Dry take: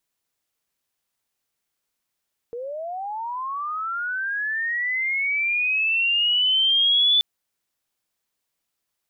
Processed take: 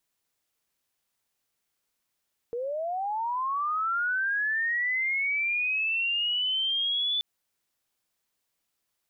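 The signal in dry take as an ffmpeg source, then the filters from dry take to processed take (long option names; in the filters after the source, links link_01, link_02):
-f lavfi -i "aevalsrc='pow(10,(-29+14.5*t/4.68)/20)*sin(2*PI*(460*t+3040*t*t/(2*4.68)))':duration=4.68:sample_rate=44100"
-af "alimiter=level_in=0.5dB:limit=-24dB:level=0:latency=1:release=69,volume=-0.5dB"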